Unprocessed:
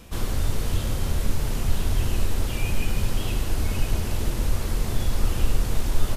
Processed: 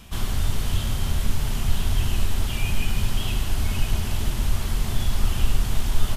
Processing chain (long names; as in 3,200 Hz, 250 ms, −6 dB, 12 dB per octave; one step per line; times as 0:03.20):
thirty-one-band graphic EQ 315 Hz −7 dB, 500 Hz −11 dB, 3,150 Hz +5 dB
level +1 dB